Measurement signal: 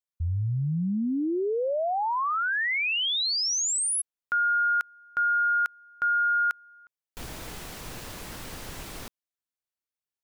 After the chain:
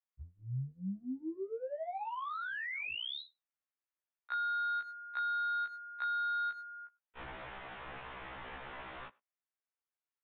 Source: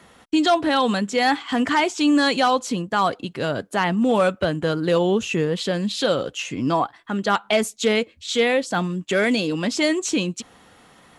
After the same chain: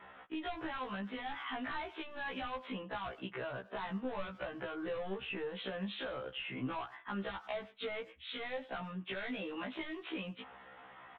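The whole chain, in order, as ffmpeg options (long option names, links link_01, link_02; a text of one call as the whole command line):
ffmpeg -i in.wav -filter_complex "[0:a]acrossover=split=590 2600:gain=0.224 1 0.112[link_01][link_02][link_03];[link_01][link_02][link_03]amix=inputs=3:normalize=0,aresample=8000,asoftclip=type=tanh:threshold=-25.5dB,aresample=44100,asplit=2[link_04][link_05];[link_05]adelay=100,highpass=300,lowpass=3400,asoftclip=type=hard:threshold=-29.5dB,volume=-26dB[link_06];[link_04][link_06]amix=inputs=2:normalize=0,acrossover=split=140[link_07][link_08];[link_08]acompressor=threshold=-39dB:ratio=8:attack=8.5:release=166:knee=2.83:detection=peak[link_09];[link_07][link_09]amix=inputs=2:normalize=0,afftfilt=real='re*1.73*eq(mod(b,3),0)':imag='im*1.73*eq(mod(b,3),0)':win_size=2048:overlap=0.75,volume=2.5dB" out.wav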